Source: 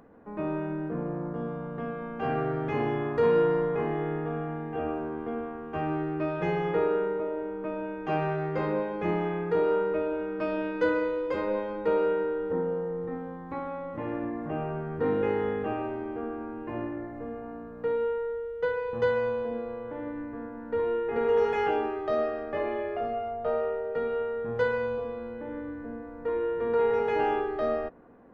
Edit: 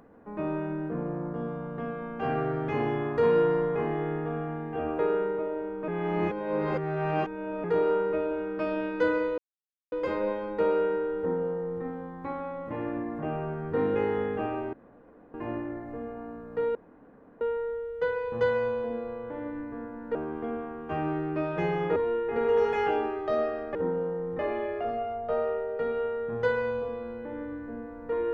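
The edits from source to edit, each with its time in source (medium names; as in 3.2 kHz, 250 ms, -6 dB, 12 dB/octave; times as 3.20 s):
4.99–6.80 s: move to 20.76 s
7.69–9.45 s: reverse
11.19 s: insert silence 0.54 s
12.46–13.10 s: copy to 22.55 s
16.00–16.61 s: room tone
18.02 s: insert room tone 0.66 s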